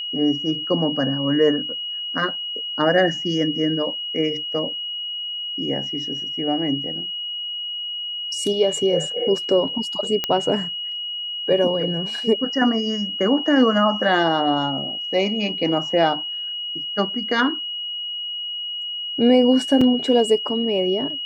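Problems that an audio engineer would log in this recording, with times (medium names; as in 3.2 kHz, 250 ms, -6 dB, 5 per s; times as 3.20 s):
whine 2.9 kHz -26 dBFS
10.24 s: pop -7 dBFS
19.81 s: dropout 4.1 ms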